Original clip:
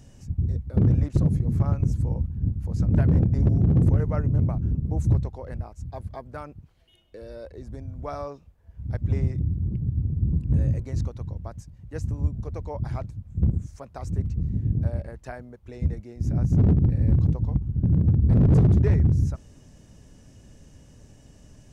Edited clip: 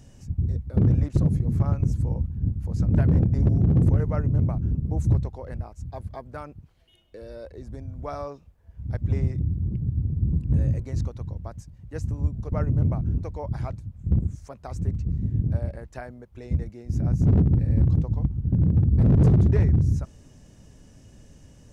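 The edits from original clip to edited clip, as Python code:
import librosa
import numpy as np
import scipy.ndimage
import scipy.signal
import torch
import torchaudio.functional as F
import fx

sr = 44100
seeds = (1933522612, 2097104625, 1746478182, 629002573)

y = fx.edit(x, sr, fx.duplicate(start_s=4.09, length_s=0.69, to_s=12.52), tone=tone)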